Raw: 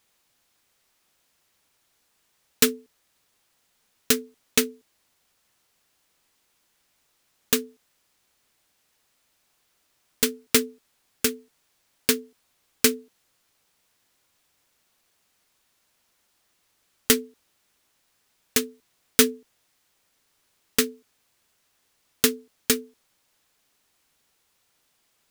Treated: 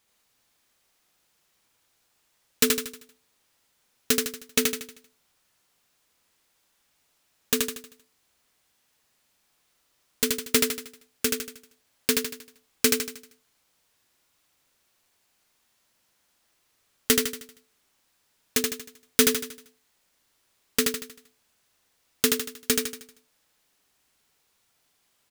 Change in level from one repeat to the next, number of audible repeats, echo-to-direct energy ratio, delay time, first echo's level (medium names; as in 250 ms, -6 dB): -7.0 dB, 5, -2.0 dB, 78 ms, -3.0 dB